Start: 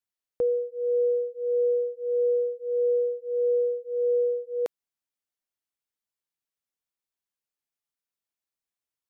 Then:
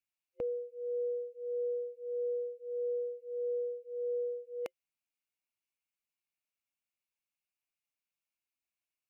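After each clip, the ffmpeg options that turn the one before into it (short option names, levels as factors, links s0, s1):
-af "superequalizer=7b=0.501:12b=2.82,volume=0.562"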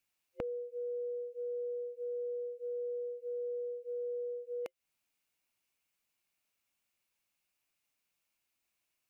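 -af "acompressor=threshold=0.00447:ratio=6,volume=2.82"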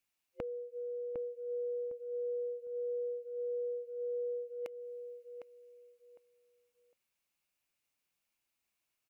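-filter_complex "[0:a]asplit=2[s0][s1];[s1]adelay=756,lowpass=f=1800:p=1,volume=0.447,asplit=2[s2][s3];[s3]adelay=756,lowpass=f=1800:p=1,volume=0.25,asplit=2[s4][s5];[s5]adelay=756,lowpass=f=1800:p=1,volume=0.25[s6];[s0][s2][s4][s6]amix=inputs=4:normalize=0,volume=0.794"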